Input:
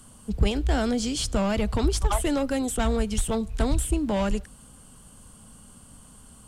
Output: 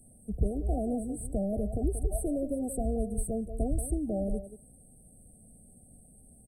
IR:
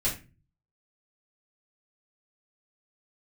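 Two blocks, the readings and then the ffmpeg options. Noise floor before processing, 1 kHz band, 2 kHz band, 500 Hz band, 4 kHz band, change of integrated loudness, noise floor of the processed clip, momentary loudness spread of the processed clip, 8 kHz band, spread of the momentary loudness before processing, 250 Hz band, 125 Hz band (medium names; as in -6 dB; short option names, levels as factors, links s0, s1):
-51 dBFS, -12.0 dB, under -40 dB, -5.5 dB, under -40 dB, -6.5 dB, -57 dBFS, 4 LU, -8.5 dB, 3 LU, -6.0 dB, -6.0 dB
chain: -filter_complex "[0:a]afftfilt=real='re*(1-between(b*sr/4096,780,8000))':imag='im*(1-between(b*sr/4096,780,8000))':win_size=4096:overlap=0.75,asplit=2[s0][s1];[s1]adelay=180,highpass=300,lowpass=3400,asoftclip=type=hard:threshold=0.106,volume=0.355[s2];[s0][s2]amix=inputs=2:normalize=0,volume=0.501"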